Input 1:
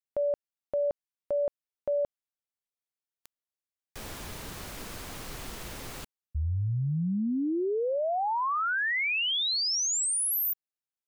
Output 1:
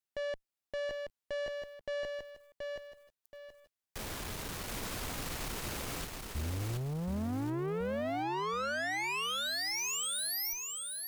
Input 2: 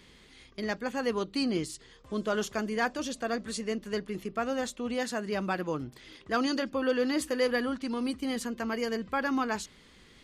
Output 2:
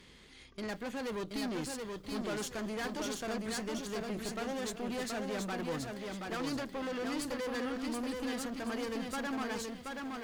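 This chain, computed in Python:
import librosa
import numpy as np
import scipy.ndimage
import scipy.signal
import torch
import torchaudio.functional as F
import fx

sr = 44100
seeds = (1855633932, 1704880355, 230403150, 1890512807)

y = fx.rider(x, sr, range_db=5, speed_s=2.0)
y = fx.tube_stage(y, sr, drive_db=35.0, bias=0.5)
y = fx.echo_crushed(y, sr, ms=727, feedback_pct=35, bits=11, wet_db=-3.5)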